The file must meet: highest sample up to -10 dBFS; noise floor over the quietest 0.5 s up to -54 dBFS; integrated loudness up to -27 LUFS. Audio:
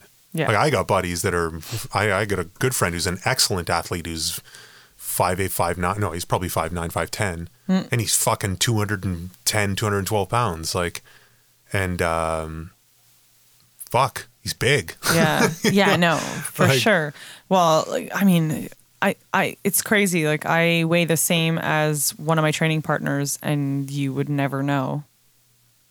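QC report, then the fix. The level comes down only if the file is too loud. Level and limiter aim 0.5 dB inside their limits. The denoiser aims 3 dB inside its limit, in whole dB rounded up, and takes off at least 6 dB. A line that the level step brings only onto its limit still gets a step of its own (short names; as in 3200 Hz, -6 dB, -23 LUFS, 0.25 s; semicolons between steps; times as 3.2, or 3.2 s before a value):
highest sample -4.5 dBFS: fail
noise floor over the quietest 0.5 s -60 dBFS: OK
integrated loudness -21.5 LUFS: fail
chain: gain -6 dB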